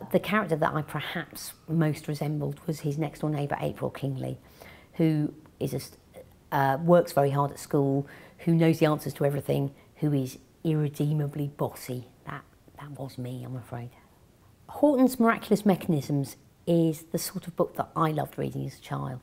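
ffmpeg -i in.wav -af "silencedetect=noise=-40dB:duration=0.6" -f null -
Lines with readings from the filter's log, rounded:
silence_start: 13.93
silence_end: 14.69 | silence_duration: 0.76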